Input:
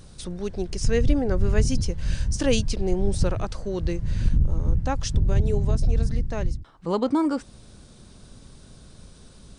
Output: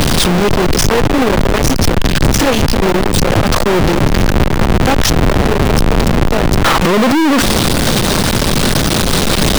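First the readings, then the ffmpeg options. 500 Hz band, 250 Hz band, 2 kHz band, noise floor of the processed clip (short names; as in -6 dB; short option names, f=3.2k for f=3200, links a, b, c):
+14.0 dB, +14.5 dB, +22.5 dB, -14 dBFS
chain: -filter_complex "[0:a]aeval=exprs='val(0)+0.5*0.0891*sgn(val(0))':c=same,aeval=exprs='(tanh(31.6*val(0)+0.65)-tanh(0.65))/31.6':c=same,acrossover=split=140|4600[a][b][c];[b]acontrast=83[d];[a][d][c]amix=inputs=3:normalize=0,alimiter=level_in=22dB:limit=-1dB:release=50:level=0:latency=1,volume=-1dB"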